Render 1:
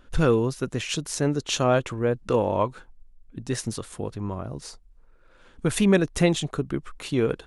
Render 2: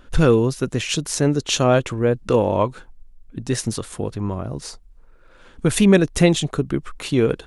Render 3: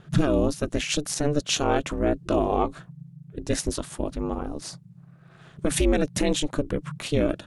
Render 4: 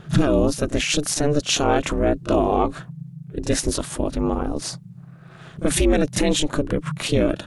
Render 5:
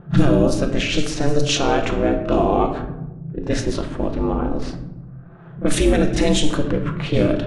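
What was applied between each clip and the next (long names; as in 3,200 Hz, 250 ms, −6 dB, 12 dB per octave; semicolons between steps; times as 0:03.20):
dynamic equaliser 1,100 Hz, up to −3 dB, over −37 dBFS, Q 0.79; level +6 dB
brickwall limiter −10 dBFS, peak gain reduction 8.5 dB; ring modulation 150 Hz
in parallel at +3 dB: brickwall limiter −21 dBFS, peak gain reduction 11 dB; on the sum: echo ahead of the sound 32 ms −14.5 dB
rectangular room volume 400 cubic metres, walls mixed, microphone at 0.79 metres; low-pass that shuts in the quiet parts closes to 960 Hz, open at −10 dBFS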